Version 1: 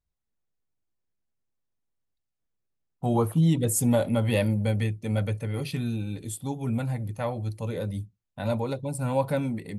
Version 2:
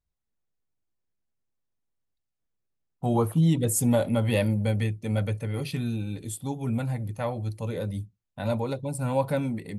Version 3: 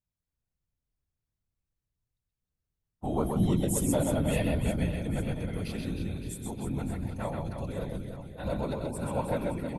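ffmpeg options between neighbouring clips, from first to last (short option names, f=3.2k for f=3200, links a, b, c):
-af anull
-af "afftfilt=real='hypot(re,im)*cos(2*PI*random(0))':imag='hypot(re,im)*sin(2*PI*random(1))':win_size=512:overlap=0.75,aecho=1:1:130|312|566.8|923.5|1423:0.631|0.398|0.251|0.158|0.1"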